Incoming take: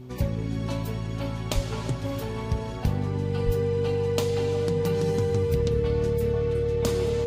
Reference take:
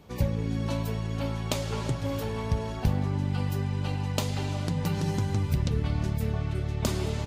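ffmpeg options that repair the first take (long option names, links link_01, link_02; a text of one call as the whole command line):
ffmpeg -i in.wav -filter_complex "[0:a]bandreject=frequency=125.6:width_type=h:width=4,bandreject=frequency=251.2:width_type=h:width=4,bandreject=frequency=376.8:width_type=h:width=4,bandreject=frequency=470:width=30,asplit=3[link_01][link_02][link_03];[link_01]afade=type=out:start_time=1.54:duration=0.02[link_04];[link_02]highpass=frequency=140:width=0.5412,highpass=frequency=140:width=1.3066,afade=type=in:start_time=1.54:duration=0.02,afade=type=out:start_time=1.66:duration=0.02[link_05];[link_03]afade=type=in:start_time=1.66:duration=0.02[link_06];[link_04][link_05][link_06]amix=inputs=3:normalize=0,asplit=3[link_07][link_08][link_09];[link_07]afade=type=out:start_time=3.45:duration=0.02[link_10];[link_08]highpass=frequency=140:width=0.5412,highpass=frequency=140:width=1.3066,afade=type=in:start_time=3.45:duration=0.02,afade=type=out:start_time=3.57:duration=0.02[link_11];[link_09]afade=type=in:start_time=3.57:duration=0.02[link_12];[link_10][link_11][link_12]amix=inputs=3:normalize=0" out.wav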